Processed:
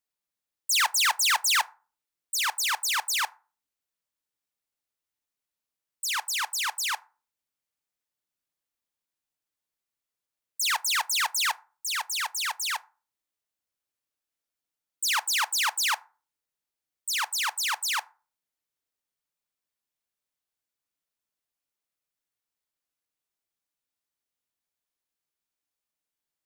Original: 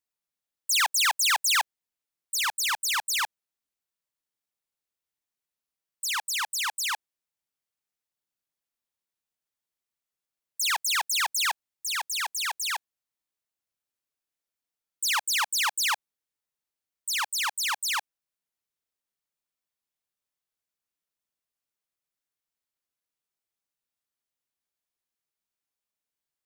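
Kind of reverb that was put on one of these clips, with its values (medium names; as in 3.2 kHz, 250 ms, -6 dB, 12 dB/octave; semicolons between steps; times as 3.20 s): FDN reverb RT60 0.36 s, low-frequency decay 1.2×, high-frequency decay 0.55×, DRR 15 dB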